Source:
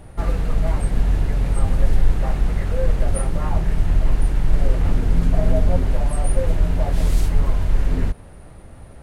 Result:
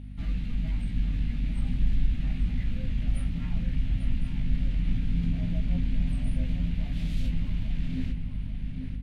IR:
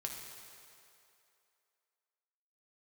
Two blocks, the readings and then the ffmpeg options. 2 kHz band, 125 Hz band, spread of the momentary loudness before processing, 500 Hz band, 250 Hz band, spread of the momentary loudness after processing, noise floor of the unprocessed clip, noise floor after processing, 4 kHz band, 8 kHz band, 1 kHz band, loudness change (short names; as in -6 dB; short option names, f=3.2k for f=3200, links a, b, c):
-10.0 dB, -8.0 dB, 3 LU, -24.0 dB, -4.5 dB, 4 LU, -41 dBFS, -35 dBFS, -6.5 dB, under -20 dB, -22.5 dB, -9.0 dB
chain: -filter_complex "[0:a]firequalizer=gain_entry='entry(120,0);entry(250,6);entry(380,-19);entry(730,-15);entry(1100,-15);entry(2300,3);entry(3400,4);entry(5400,-6);entry(8200,-12)':delay=0.05:min_phase=1,flanger=delay=15.5:depth=2.6:speed=0.48,asplit=2[a][b];[b]asoftclip=type=hard:threshold=-23.5dB,volume=-11.5dB[c];[a][c]amix=inputs=2:normalize=0,aeval=exprs='val(0)+0.0251*(sin(2*PI*50*n/s)+sin(2*PI*2*50*n/s)/2+sin(2*PI*3*50*n/s)/3+sin(2*PI*4*50*n/s)/4+sin(2*PI*5*50*n/s)/5)':c=same,asplit=2[d][e];[e]adelay=840,lowpass=f=4.2k:p=1,volume=-6dB,asplit=2[f][g];[g]adelay=840,lowpass=f=4.2k:p=1,volume=0.38,asplit=2[h][i];[i]adelay=840,lowpass=f=4.2k:p=1,volume=0.38,asplit=2[j][k];[k]adelay=840,lowpass=f=4.2k:p=1,volume=0.38,asplit=2[l][m];[m]adelay=840,lowpass=f=4.2k:p=1,volume=0.38[n];[d][f][h][j][l][n]amix=inputs=6:normalize=0,volume=-7.5dB"